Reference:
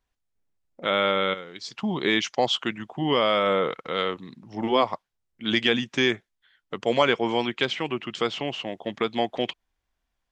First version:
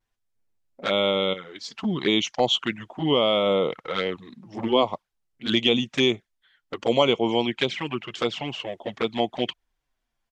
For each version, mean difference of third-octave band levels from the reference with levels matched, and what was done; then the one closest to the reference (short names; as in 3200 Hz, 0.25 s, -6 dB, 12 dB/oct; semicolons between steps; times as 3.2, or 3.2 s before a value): 2.5 dB: vibrato 0.38 Hz 15 cents; envelope flanger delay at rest 8.9 ms, full sweep at -20.5 dBFS; downsampling 32000 Hz; gain +3 dB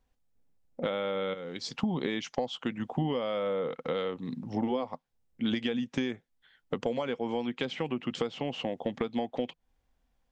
4.0 dB: thirty-one-band EQ 160 Hz +6 dB, 250 Hz +10 dB, 500 Hz +10 dB, 800 Hz +6 dB; compressor 12:1, threshold -28 dBFS, peak gain reduction 18.5 dB; low shelf 160 Hz +8 dB; gain -1 dB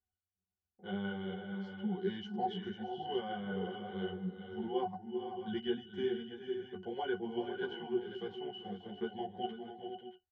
8.5 dB: octave resonator F#, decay 0.16 s; tapped delay 0.397/0.427/0.494/0.618/0.635 s -15/-11.5/-9.5/-17/-12.5 dB; ensemble effect; gain +2.5 dB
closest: first